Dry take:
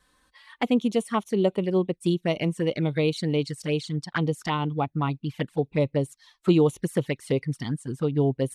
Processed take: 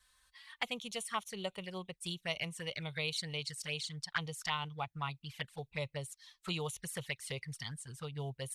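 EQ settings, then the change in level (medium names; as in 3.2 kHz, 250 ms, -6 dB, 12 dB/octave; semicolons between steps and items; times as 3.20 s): amplifier tone stack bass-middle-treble 10-0-10; 0.0 dB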